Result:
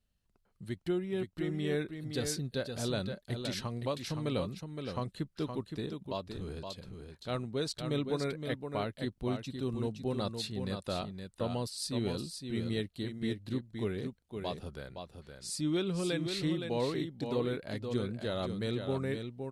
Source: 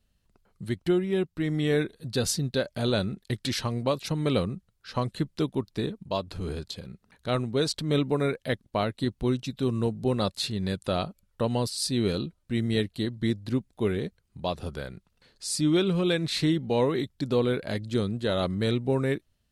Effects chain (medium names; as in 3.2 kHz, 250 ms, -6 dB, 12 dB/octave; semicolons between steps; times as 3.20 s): delay 517 ms -6.5 dB; 14.00–14.57 s: dynamic bell 7.6 kHz, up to +7 dB, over -55 dBFS, Q 0.84; trim -8.5 dB